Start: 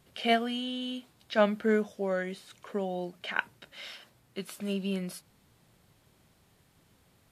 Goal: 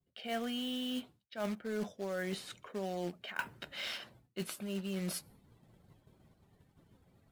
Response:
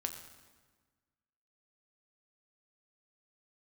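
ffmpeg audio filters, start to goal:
-af "areverse,acompressor=threshold=-40dB:ratio=8,areverse,acrusher=bits=3:mode=log:mix=0:aa=0.000001,afftdn=noise_reduction=14:noise_floor=-66,acontrast=76,agate=range=-33dB:threshold=-54dB:ratio=3:detection=peak,volume=-2dB"

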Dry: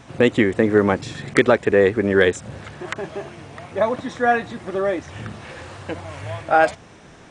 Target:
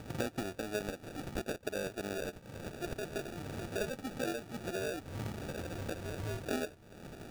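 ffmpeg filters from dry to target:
ffmpeg -i in.wav -filter_complex "[0:a]asettb=1/sr,asplit=3[link_01][link_02][link_03];[link_01]atrim=end=0.554[link_04];[link_02]atrim=start=0.55:end=2.83,asetpts=PTS-STARTPTS,afade=type=in:duration=0.004:curve=qsin,afade=type=out:start_time=2.276:duration=0.004:curve=qsin,lowshelf=frequency=440:gain=-9.5[link_05];[link_03]atrim=start=2.826[link_06];[link_04][link_05]acrossfade=duration=0.004:curve1=hsin:curve2=qsin[link_07];[link_07][link_06]acrossfade=duration=0.004:curve1=qsin:curve2=hsin,acompressor=threshold=-33dB:ratio=6,acrusher=samples=42:mix=1:aa=0.000001,volume=-2.5dB" out.wav

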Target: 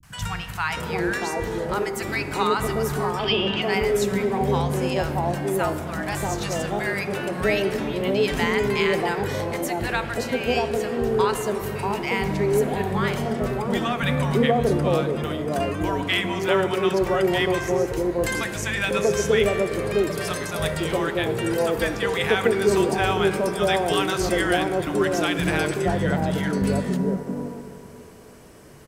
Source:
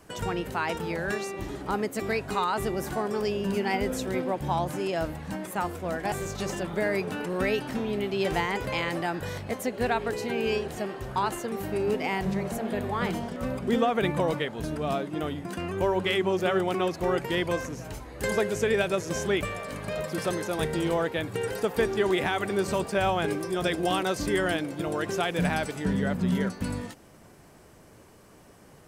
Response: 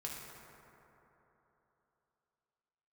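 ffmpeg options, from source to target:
-filter_complex "[0:a]asettb=1/sr,asplit=3[link_01][link_02][link_03];[link_01]atrim=end=3.164[link_04];[link_02]atrim=start=3.16:end=3.59,asetpts=PTS-STARTPTS,afade=type=in:duration=0.004:curve=qsin,afade=type=out:start_time=0.426:duration=0.004:curve=qsin,lowpass=frequency=3200:width_type=q:width=6.8[link_05];[link_03]atrim=start=3.586[link_06];[link_04][link_05]acrossfade=duration=0.004:curve1=hsin:curve2=qsin[link_07];[link_07][link_06]acrossfade=duration=0.004:curve1=qsin:curve2=hsin,acrossover=split=180|870[link_08][link_09][link_10];[link_10]adelay=30[link_11];[link_09]adelay=670[link_12];[link_08][link_12][link_11]amix=inputs=3:normalize=0,asplit=2[link_13][link_14];[1:a]atrim=start_sample=2205[link_15];[link_14][link_15]afir=irnorm=-1:irlink=0,volume=-4.5dB[link_16];[link_13][link_16]amix=inputs=2:normalize=0,volume=3.5dB"

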